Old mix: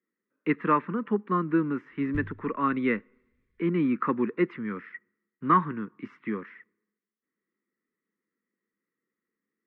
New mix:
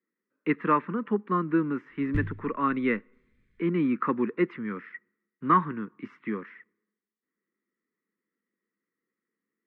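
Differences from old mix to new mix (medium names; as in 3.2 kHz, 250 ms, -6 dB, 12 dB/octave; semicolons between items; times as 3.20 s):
background +8.5 dB; master: add peaking EQ 68 Hz -5.5 dB 1.1 oct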